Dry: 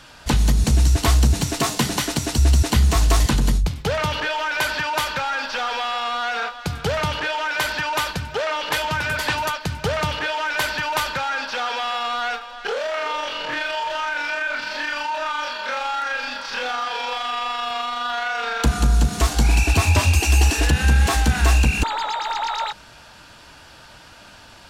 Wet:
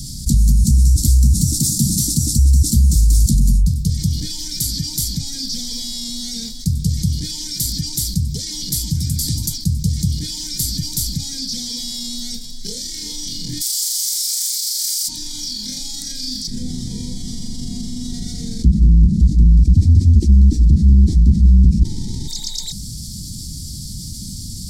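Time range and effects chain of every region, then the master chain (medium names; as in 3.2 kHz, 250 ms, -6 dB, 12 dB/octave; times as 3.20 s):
13.60–15.07 s: spectral contrast reduction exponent 0.48 + Bessel high-pass 790 Hz, order 8 + comb 7.1 ms, depth 46%
16.47–22.28 s: square wave that keeps the level + tape spacing loss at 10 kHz 30 dB + small resonant body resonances 360/670/1900 Hz, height 7 dB
whole clip: elliptic band-stop 200–7600 Hz, stop band 50 dB; high-order bell 3.2 kHz +14 dB; level flattener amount 50%; trim +1.5 dB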